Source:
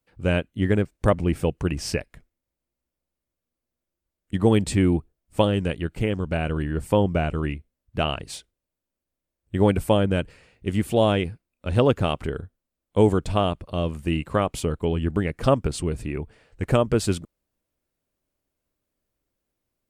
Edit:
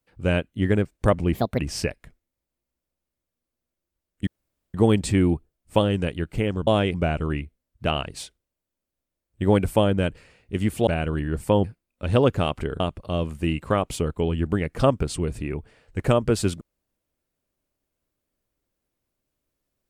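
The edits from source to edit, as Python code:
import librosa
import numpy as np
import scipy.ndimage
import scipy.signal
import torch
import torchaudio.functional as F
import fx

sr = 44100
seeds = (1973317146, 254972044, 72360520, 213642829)

y = fx.edit(x, sr, fx.speed_span(start_s=1.34, length_s=0.35, speed=1.4),
    fx.insert_room_tone(at_s=4.37, length_s=0.47),
    fx.swap(start_s=6.3, length_s=0.77, other_s=11.0, other_length_s=0.27),
    fx.cut(start_s=12.43, length_s=1.01), tone=tone)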